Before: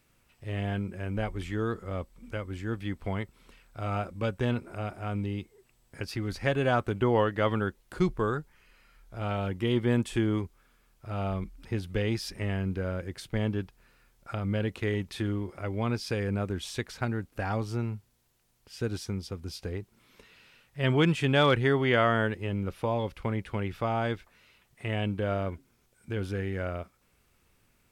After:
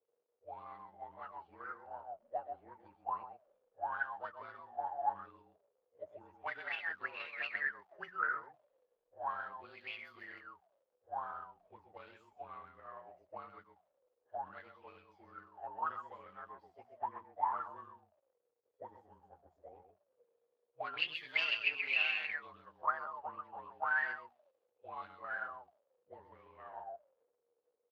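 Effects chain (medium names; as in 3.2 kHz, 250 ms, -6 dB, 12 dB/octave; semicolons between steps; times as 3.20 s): frequency axis rescaled in octaves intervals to 112%; hum notches 60/120/180/240 Hz; delay 130 ms -6.5 dB; crackle 340 per s -41 dBFS; ten-band graphic EQ 125 Hz -3 dB, 250 Hz -5 dB, 500 Hz -4 dB, 2 kHz -4 dB, 8 kHz -10 dB; Chebyshev shaper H 4 -12 dB, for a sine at -11.5 dBFS; peaking EQ 500 Hz +3 dB 2.6 oct; auto-wah 460–2700 Hz, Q 19, up, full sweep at -23.5 dBFS; three bands expanded up and down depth 40%; trim +11.5 dB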